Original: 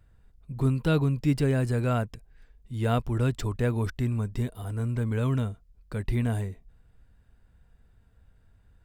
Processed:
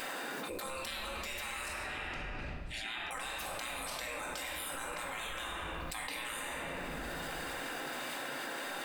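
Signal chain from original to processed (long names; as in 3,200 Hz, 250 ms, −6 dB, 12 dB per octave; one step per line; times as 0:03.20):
0:01.68–0:03.11: formant filter e
gate on every frequency bin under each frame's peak −30 dB weak
rectangular room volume 800 cubic metres, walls mixed, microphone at 2.1 metres
envelope flattener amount 100%
level −1 dB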